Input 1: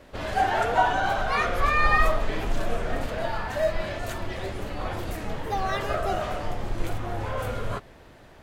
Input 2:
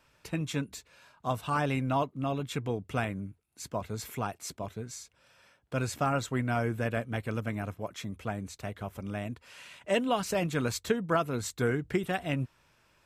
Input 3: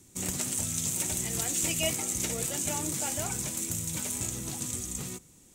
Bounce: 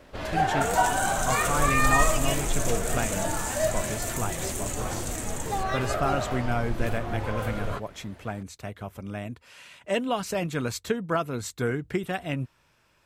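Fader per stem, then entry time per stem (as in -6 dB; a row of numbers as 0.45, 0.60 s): -1.5, +1.0, -2.0 dB; 0.00, 0.00, 0.45 s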